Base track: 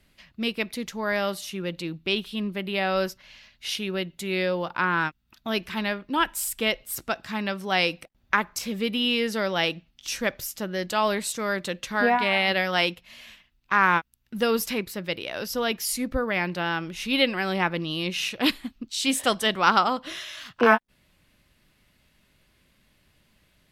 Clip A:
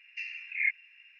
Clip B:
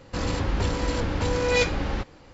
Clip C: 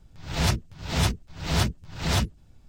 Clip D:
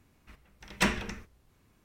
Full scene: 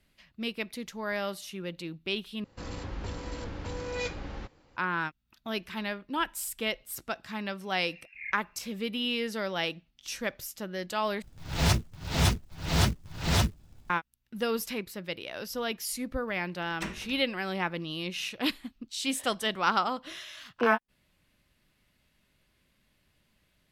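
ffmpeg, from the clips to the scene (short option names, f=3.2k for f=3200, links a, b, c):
-filter_complex "[0:a]volume=-6.5dB[a];[3:a]acrusher=bits=5:mode=log:mix=0:aa=0.000001[b];[a]asplit=3[c][d][e];[c]atrim=end=2.444[f];[2:a]atrim=end=2.33,asetpts=PTS-STARTPTS,volume=-12dB[g];[d]atrim=start=4.766:end=11.224[h];[b]atrim=end=2.68,asetpts=PTS-STARTPTS,volume=-1dB[i];[e]atrim=start=13.896[j];[1:a]atrim=end=1.19,asetpts=PTS-STARTPTS,volume=-12dB,afade=t=in:d=0.004:c=hsin,afade=t=out:st=1.186:d=0.004:c=hsin,adelay=7610[k];[4:a]atrim=end=1.84,asetpts=PTS-STARTPTS,volume=-10.5dB,afade=t=in:d=0.004:c=hsin,afade=t=out:st=1.836:d=0.004:c=hsin,adelay=16000[l];[f][g]acrossfade=d=0.004:c1=hsin:c2=hsin[m];[m][h]acrossfade=d=0.004:c1=hsin:c2=hsin[n];[n][i]acrossfade=d=0.004:c1=hsin:c2=hsin[o];[o][j]acrossfade=d=0.004:c1=hsin:c2=hsin[p];[p][k][l]amix=inputs=3:normalize=0"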